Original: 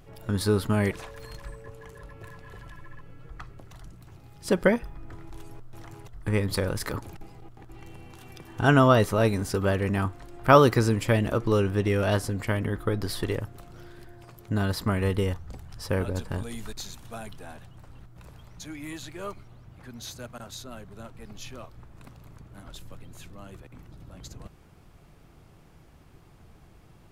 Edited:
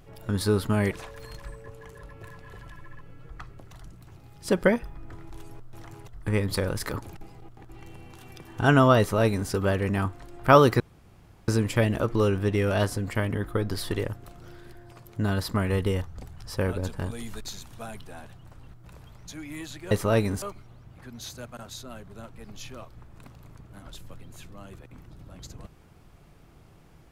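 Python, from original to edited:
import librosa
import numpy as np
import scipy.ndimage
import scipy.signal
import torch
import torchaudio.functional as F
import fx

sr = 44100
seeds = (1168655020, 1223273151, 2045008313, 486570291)

y = fx.edit(x, sr, fx.duplicate(start_s=8.99, length_s=0.51, to_s=19.23),
    fx.insert_room_tone(at_s=10.8, length_s=0.68), tone=tone)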